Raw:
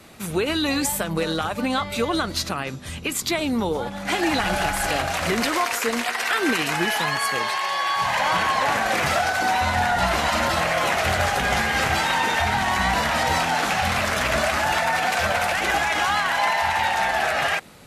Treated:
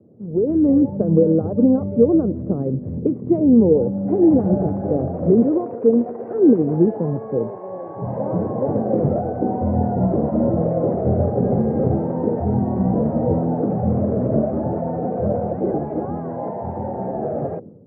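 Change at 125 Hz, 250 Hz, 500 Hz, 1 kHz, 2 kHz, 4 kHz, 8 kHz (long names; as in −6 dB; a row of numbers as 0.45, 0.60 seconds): +9.5 dB, +11.5 dB, +7.5 dB, −9.0 dB, below −30 dB, below −40 dB, below −40 dB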